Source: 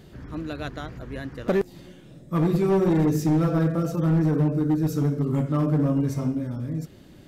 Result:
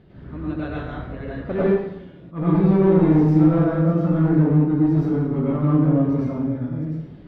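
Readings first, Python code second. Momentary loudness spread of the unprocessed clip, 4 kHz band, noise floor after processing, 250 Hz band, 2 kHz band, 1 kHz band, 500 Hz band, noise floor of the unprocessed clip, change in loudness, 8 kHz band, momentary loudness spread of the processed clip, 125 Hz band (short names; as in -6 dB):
14 LU, n/a, -43 dBFS, +5.5 dB, +2.0 dB, +3.0 dB, +4.0 dB, -48 dBFS, +4.5 dB, under -20 dB, 16 LU, +4.0 dB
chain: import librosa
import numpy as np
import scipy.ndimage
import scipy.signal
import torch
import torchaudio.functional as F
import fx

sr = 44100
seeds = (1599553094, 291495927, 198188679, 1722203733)

y = fx.air_absorb(x, sr, metres=370.0)
y = fx.rev_plate(y, sr, seeds[0], rt60_s=0.76, hf_ratio=0.9, predelay_ms=85, drr_db=-7.0)
y = fx.attack_slew(y, sr, db_per_s=230.0)
y = F.gain(torch.from_numpy(y), -3.0).numpy()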